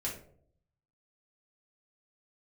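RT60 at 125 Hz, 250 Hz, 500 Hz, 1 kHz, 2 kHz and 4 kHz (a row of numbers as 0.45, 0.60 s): 1.0, 0.75, 0.70, 0.55, 0.35, 0.30 s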